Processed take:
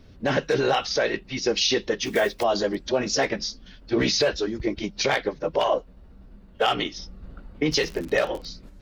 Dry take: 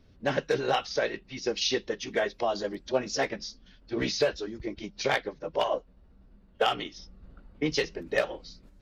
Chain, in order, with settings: 2.04–2.45 block floating point 5-bit; 7.7–8.46 crackle 220/s -> 45/s -38 dBFS; limiter -21.5 dBFS, peak gain reduction 7.5 dB; gain +9 dB

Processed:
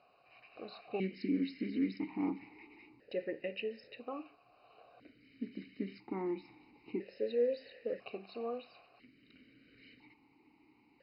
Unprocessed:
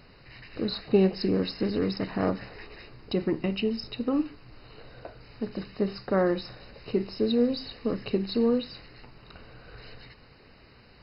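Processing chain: dynamic EQ 2200 Hz, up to +6 dB, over -56 dBFS, Q 2.8; vowel sequencer 1 Hz; gain +1 dB

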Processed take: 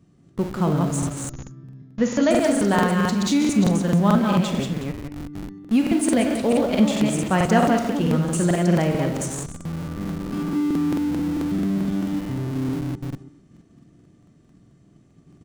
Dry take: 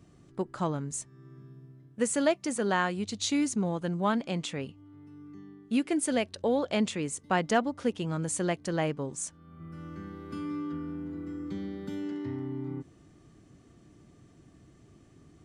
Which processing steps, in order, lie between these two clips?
reverse delay 0.182 s, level -4 dB; gate -53 dBFS, range -7 dB; bell 180 Hz +8 dB 1.4 oct; echo 0.18 s -9.5 dB; reverb RT60 0.40 s, pre-delay 4 ms, DRR 7 dB; in parallel at -12 dB: Schmitt trigger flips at -35 dBFS; 1.29–2.31 on the sum: brick-wall FIR low-pass 7100 Hz; crackling interface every 0.22 s, samples 2048, repeat, from 0.98; gain +2.5 dB

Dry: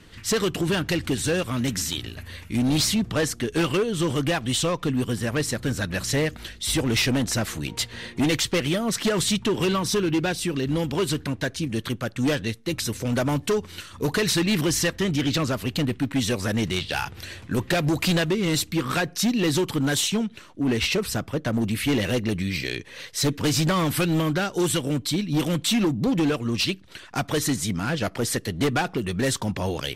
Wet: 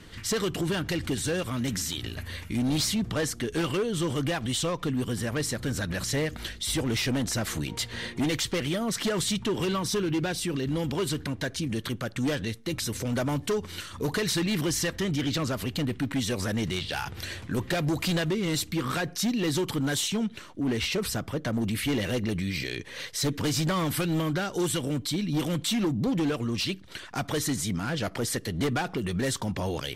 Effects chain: notch 2600 Hz, Q 23; limiter -23.5 dBFS, peak gain reduction 8.5 dB; gain +1.5 dB

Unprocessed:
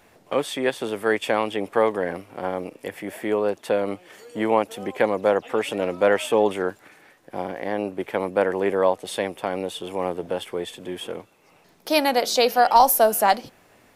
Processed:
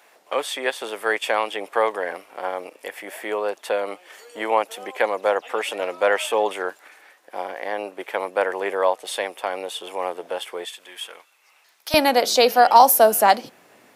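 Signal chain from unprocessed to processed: HPF 600 Hz 12 dB/oct, from 10.66 s 1300 Hz, from 11.94 s 190 Hz; gain +3 dB

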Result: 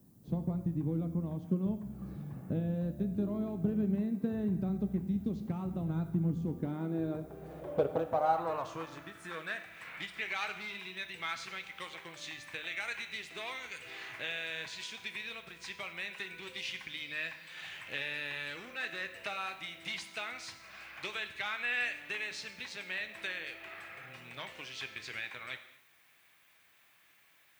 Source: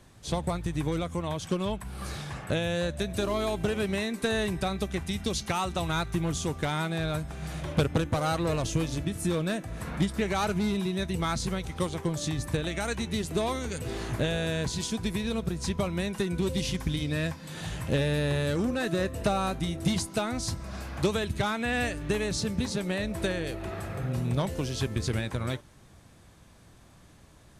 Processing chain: non-linear reverb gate 0.29 s falling, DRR 8 dB; band-pass sweep 210 Hz -> 2300 Hz, 6.45–9.8; added noise violet -72 dBFS; gain +2 dB

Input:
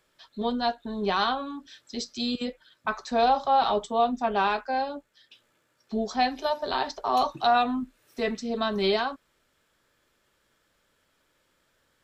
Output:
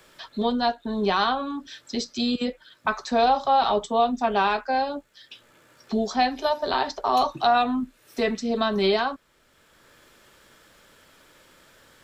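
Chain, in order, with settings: three-band squash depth 40%; gain +3 dB

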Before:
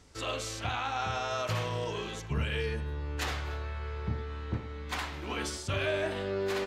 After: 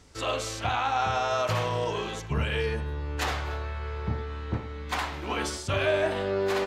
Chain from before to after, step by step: dynamic EQ 790 Hz, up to +5 dB, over -46 dBFS, Q 0.92; gain +3 dB

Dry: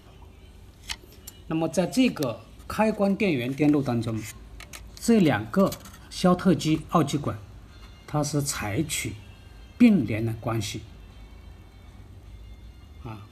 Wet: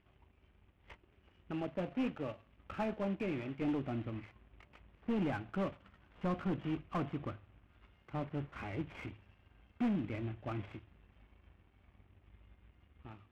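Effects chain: CVSD 16 kbps; soft clip -20.5 dBFS, distortion -10 dB; power-law curve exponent 1.4; gain -8.5 dB

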